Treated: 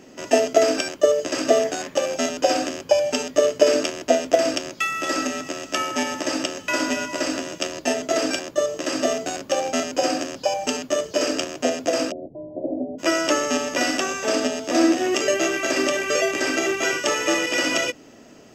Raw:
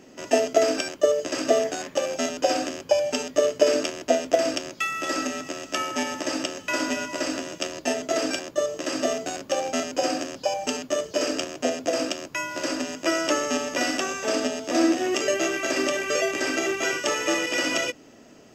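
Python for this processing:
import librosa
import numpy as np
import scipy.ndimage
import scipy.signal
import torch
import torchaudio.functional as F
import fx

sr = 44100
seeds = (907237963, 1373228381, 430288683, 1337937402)

y = fx.steep_lowpass(x, sr, hz=750.0, slope=72, at=(12.1, 12.98), fade=0.02)
y = y * 10.0 ** (3.0 / 20.0)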